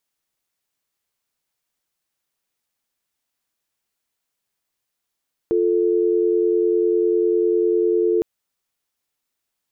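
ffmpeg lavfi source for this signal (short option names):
-f lavfi -i "aevalsrc='0.126*(sin(2*PI*350*t)+sin(2*PI*440*t))':d=2.71:s=44100"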